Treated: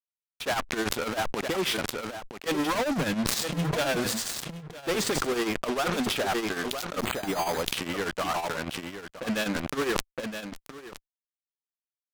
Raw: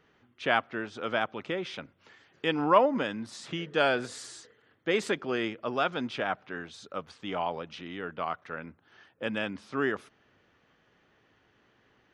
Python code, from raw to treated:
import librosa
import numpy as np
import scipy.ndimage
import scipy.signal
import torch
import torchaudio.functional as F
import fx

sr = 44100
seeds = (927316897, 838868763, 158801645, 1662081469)

y = fx.peak_eq(x, sr, hz=160.0, db=15.0, octaves=0.44, at=(2.76, 3.77))
y = fx.fuzz(y, sr, gain_db=44.0, gate_db=-43.0)
y = y * (1.0 - 0.94 / 2.0 + 0.94 / 2.0 * np.cos(2.0 * np.pi * 10.0 * (np.arange(len(y)) / sr)))
y = y + 10.0 ** (-16.5 / 20.0) * np.pad(y, (int(968 * sr / 1000.0), 0))[:len(y)]
y = fx.resample_bad(y, sr, factor=8, down='filtered', up='hold', at=(6.99, 7.63))
y = fx.sustainer(y, sr, db_per_s=21.0)
y = y * 10.0 ** (-10.0 / 20.0)